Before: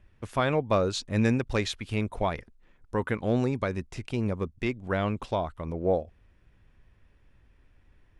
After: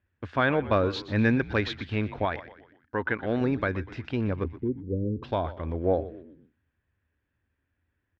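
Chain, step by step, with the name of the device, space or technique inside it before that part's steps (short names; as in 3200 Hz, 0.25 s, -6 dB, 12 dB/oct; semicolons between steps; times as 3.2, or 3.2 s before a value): 4.44–5.23 steep low-pass 520 Hz 96 dB/oct; gate -51 dBFS, range -15 dB; frequency-shifting delay pedal into a guitar cabinet (frequency-shifting echo 0.122 s, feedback 47%, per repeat -78 Hz, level -15 dB; speaker cabinet 81–4200 Hz, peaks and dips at 83 Hz +9 dB, 170 Hz -4 dB, 280 Hz +5 dB, 1600 Hz +9 dB); 2.25–3.41 low shelf 260 Hz -7 dB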